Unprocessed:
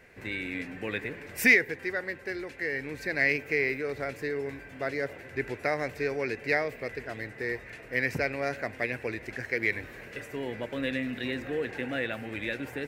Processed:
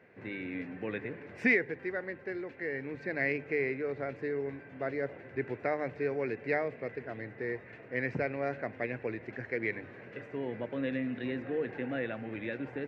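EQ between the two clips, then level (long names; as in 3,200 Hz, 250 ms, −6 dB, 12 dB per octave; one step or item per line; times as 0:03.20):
high-pass filter 100 Hz 24 dB per octave
head-to-tape spacing loss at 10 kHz 36 dB
mains-hum notches 50/100/150 Hz
0.0 dB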